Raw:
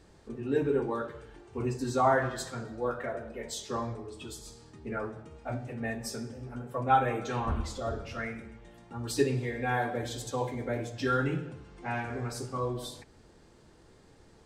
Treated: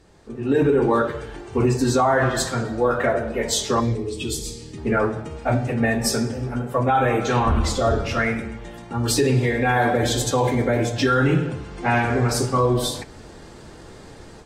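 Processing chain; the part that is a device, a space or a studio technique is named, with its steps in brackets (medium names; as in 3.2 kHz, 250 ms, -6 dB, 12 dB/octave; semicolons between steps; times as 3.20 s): 3.80–4.78 s: high-order bell 1 kHz -13.5 dB; low-bitrate web radio (level rider gain up to 12 dB; peak limiter -13.5 dBFS, peak gain reduction 11 dB; trim +3.5 dB; AAC 48 kbps 44.1 kHz)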